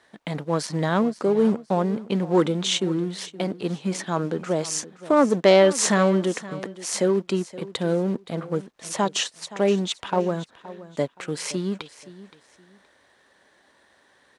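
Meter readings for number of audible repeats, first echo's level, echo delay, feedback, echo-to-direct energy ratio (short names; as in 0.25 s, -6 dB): 2, -17.0 dB, 0.521 s, 26%, -16.5 dB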